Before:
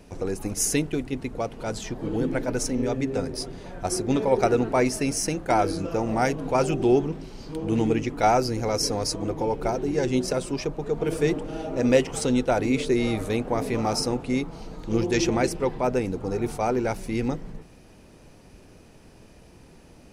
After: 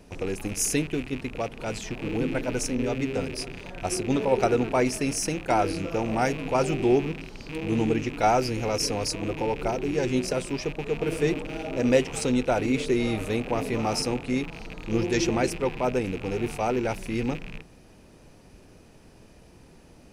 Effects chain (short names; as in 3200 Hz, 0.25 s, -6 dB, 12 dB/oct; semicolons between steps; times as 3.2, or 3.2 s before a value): rattling part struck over -40 dBFS, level -27 dBFS; gain -1.5 dB